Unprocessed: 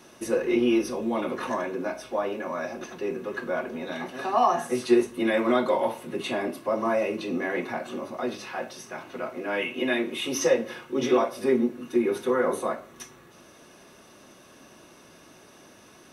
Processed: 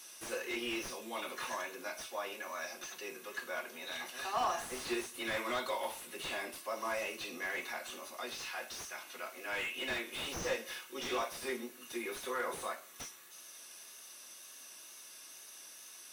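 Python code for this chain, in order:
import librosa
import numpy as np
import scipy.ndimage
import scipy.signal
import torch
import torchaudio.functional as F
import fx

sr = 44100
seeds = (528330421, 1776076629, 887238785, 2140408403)

y = np.diff(x, prepend=0.0)
y = fx.wow_flutter(y, sr, seeds[0], rate_hz=2.1, depth_cents=28.0)
y = fx.slew_limit(y, sr, full_power_hz=16.0)
y = F.gain(torch.from_numpy(y), 7.5).numpy()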